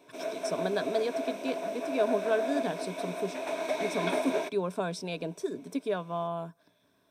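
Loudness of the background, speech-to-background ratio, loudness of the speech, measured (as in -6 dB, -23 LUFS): -34.0 LUFS, 0.0 dB, -34.0 LUFS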